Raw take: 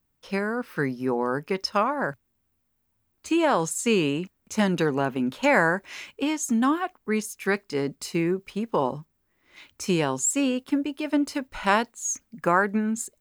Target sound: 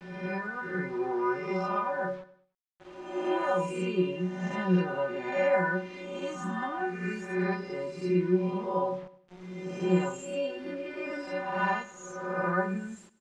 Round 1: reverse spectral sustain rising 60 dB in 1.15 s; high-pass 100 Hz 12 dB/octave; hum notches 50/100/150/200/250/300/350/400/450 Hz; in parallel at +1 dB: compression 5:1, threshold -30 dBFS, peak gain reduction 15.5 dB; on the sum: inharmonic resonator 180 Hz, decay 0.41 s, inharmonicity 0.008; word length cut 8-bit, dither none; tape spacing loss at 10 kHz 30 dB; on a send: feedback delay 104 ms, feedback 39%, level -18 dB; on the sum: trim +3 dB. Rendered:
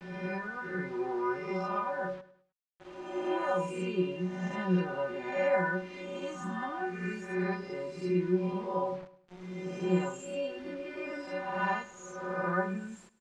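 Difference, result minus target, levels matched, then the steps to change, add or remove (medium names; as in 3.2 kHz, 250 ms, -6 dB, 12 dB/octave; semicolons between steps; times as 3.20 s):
compression: peak gain reduction +9 dB
change: compression 5:1, threshold -19 dBFS, peak gain reduction 6.5 dB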